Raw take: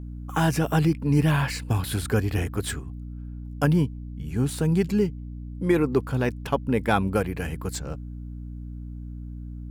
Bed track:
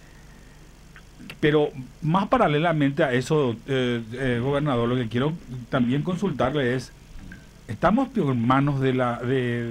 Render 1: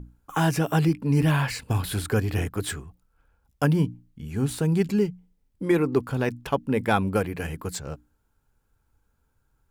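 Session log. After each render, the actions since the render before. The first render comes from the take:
mains-hum notches 60/120/180/240/300 Hz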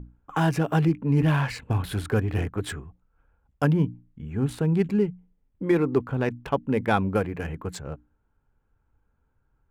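adaptive Wiener filter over 9 samples
high-shelf EQ 6,000 Hz −8 dB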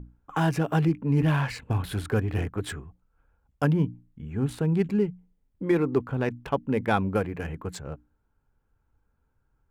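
level −1.5 dB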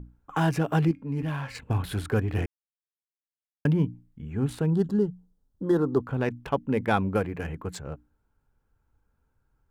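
0:00.91–0:01.55: tuned comb filter 270 Hz, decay 0.45 s
0:02.46–0:03.65: silence
0:04.70–0:06.04: Butterworth band-reject 2,300 Hz, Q 1.4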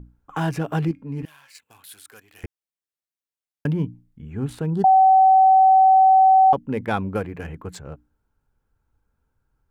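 0:01.25–0:02.44: first difference
0:04.84–0:06.53: beep over 762 Hz −10 dBFS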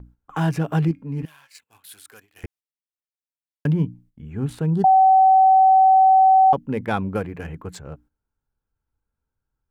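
noise gate −51 dBFS, range −10 dB
dynamic equaliser 160 Hz, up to +4 dB, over −38 dBFS, Q 3.2

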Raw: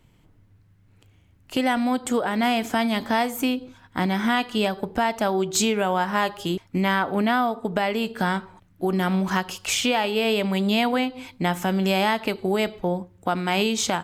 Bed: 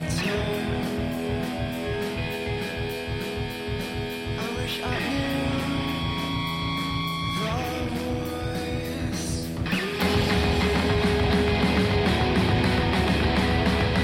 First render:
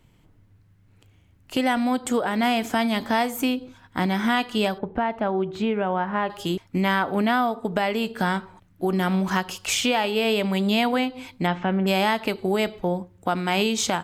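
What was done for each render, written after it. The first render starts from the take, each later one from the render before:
0:04.78–0:06.30: high-frequency loss of the air 500 metres
0:11.46–0:11.86: low-pass filter 4,900 Hz → 1,900 Hz 24 dB per octave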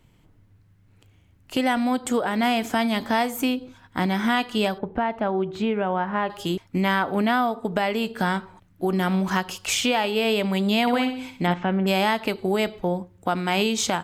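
0:10.81–0:11.54: flutter between parallel walls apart 10.7 metres, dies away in 0.45 s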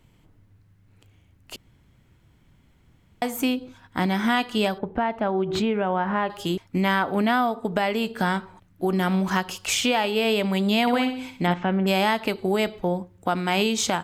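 0:01.56–0:03.22: fill with room tone
0:05.35–0:06.31: background raised ahead of every attack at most 47 dB per second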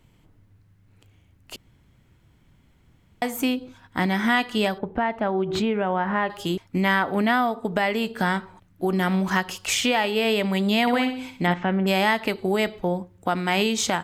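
dynamic equaliser 1,900 Hz, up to +6 dB, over −43 dBFS, Q 5.3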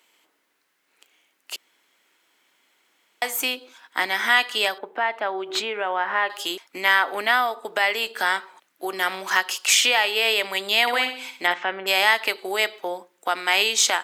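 high-pass filter 330 Hz 24 dB per octave
tilt shelving filter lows −7.5 dB, about 800 Hz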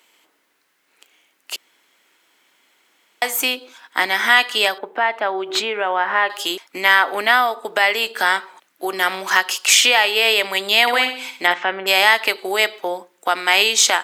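level +5 dB
brickwall limiter −1 dBFS, peak gain reduction 1 dB

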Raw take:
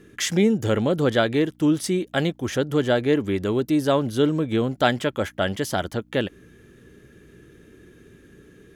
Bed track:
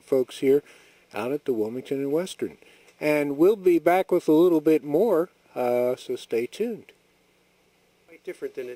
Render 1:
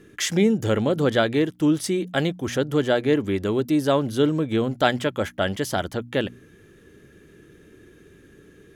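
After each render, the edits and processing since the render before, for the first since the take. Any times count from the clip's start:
hum removal 60 Hz, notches 4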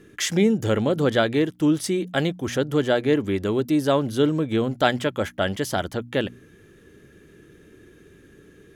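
no processing that can be heard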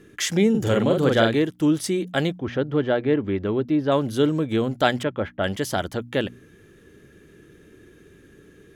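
0:00.50–0:01.35: double-tracking delay 44 ms −3 dB
0:02.38–0:03.92: high-frequency loss of the air 300 metres
0:05.03–0:05.44: high-frequency loss of the air 360 metres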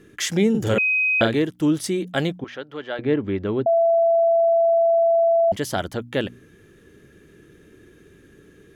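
0:00.78–0:01.21: beep over 2,520 Hz −17 dBFS
0:02.44–0:02.99: high-pass filter 1,400 Hz 6 dB per octave
0:03.66–0:05.52: beep over 669 Hz −14 dBFS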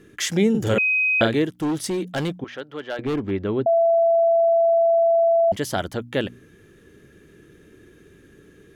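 0:01.56–0:03.31: gain into a clipping stage and back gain 20.5 dB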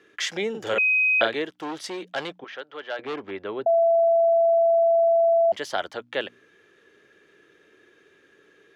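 high-pass filter 150 Hz 6 dB per octave
three-way crossover with the lows and the highs turned down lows −18 dB, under 440 Hz, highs −17 dB, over 5,700 Hz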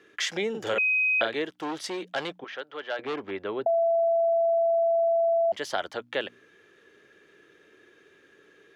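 downward compressor 2 to 1, threshold −25 dBFS, peak gain reduction 5.5 dB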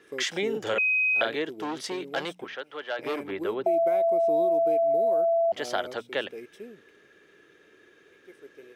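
mix in bed track −15.5 dB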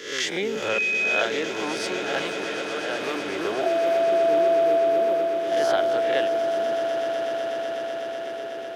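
peak hold with a rise ahead of every peak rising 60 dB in 0.65 s
echo that builds up and dies away 124 ms, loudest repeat 8, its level −13 dB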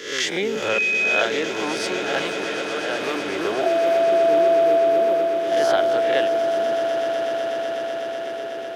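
level +3 dB

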